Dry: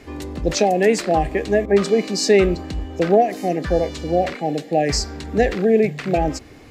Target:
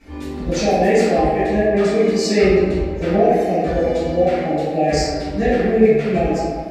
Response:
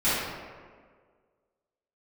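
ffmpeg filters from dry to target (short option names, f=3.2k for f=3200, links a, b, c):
-filter_complex "[1:a]atrim=start_sample=2205[a];[0:a][a]afir=irnorm=-1:irlink=0,volume=-13.5dB"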